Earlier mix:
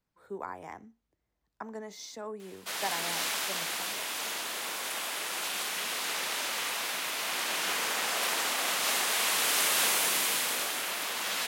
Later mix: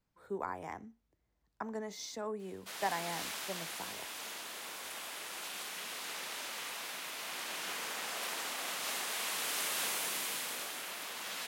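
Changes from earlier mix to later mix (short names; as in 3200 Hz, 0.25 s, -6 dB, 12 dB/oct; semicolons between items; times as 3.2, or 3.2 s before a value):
background -9.0 dB; master: add low shelf 170 Hz +4 dB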